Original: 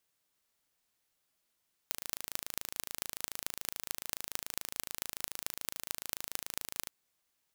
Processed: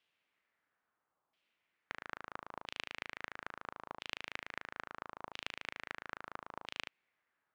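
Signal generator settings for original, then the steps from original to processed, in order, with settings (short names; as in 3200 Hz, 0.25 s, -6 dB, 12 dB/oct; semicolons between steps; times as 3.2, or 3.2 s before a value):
pulse train 27/s, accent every 6, -5.5 dBFS 4.98 s
HPF 160 Hz 6 dB/oct; LFO low-pass saw down 0.75 Hz 950–3100 Hz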